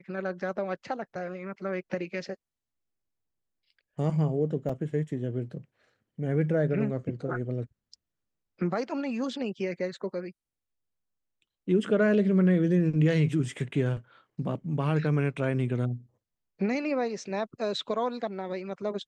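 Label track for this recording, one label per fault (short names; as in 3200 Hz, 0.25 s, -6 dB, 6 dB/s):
4.690000	4.690000	gap 4.8 ms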